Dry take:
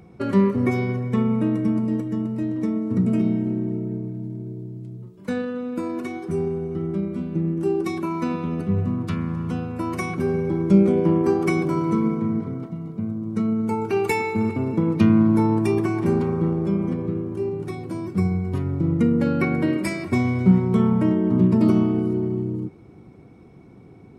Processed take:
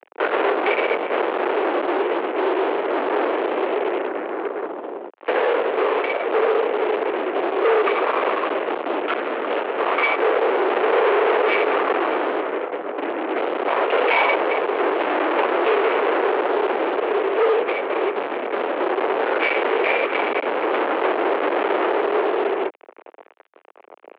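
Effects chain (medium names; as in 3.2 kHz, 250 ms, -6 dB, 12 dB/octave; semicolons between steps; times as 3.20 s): LPC vocoder at 8 kHz whisper; fuzz box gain 34 dB, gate -41 dBFS; mistuned SSB +58 Hz 350–3000 Hz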